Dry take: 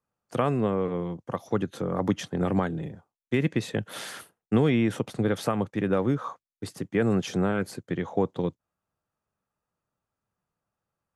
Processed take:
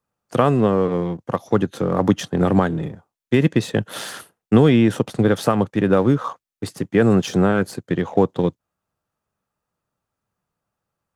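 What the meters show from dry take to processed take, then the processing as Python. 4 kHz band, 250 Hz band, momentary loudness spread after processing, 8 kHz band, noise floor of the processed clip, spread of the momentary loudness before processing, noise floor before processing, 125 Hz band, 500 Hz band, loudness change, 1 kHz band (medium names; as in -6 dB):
+7.5 dB, +8.5 dB, 13 LU, +7.0 dB, -84 dBFS, 12 LU, under -85 dBFS, +8.5 dB, +8.5 dB, +8.5 dB, +8.5 dB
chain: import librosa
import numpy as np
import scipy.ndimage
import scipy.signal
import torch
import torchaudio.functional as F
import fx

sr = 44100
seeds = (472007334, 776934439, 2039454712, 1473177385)

p1 = fx.dynamic_eq(x, sr, hz=2200.0, q=4.8, threshold_db=-53.0, ratio=4.0, max_db=-6)
p2 = np.sign(p1) * np.maximum(np.abs(p1) - 10.0 ** (-41.5 / 20.0), 0.0)
p3 = p1 + (p2 * 10.0 ** (-3.5 / 20.0))
y = p3 * 10.0 ** (4.5 / 20.0)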